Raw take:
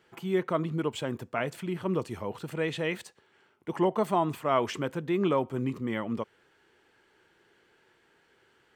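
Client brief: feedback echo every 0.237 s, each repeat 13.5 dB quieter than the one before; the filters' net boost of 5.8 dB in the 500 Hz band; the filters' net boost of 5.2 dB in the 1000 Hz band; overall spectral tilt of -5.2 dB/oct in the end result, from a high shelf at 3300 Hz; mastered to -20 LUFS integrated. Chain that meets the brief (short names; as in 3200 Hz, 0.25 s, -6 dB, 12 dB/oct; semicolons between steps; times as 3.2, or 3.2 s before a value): bell 500 Hz +6.5 dB; bell 1000 Hz +4 dB; high shelf 3300 Hz +3.5 dB; feedback echo 0.237 s, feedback 21%, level -13.5 dB; gain +6 dB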